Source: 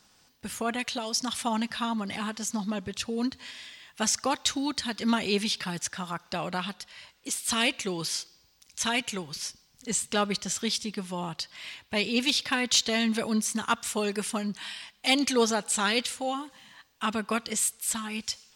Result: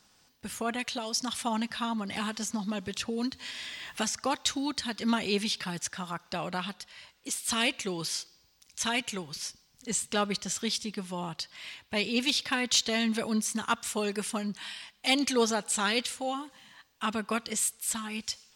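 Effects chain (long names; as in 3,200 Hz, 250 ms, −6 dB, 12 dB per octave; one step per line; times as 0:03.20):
0:02.16–0:04.24: multiband upward and downward compressor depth 70%
level −2 dB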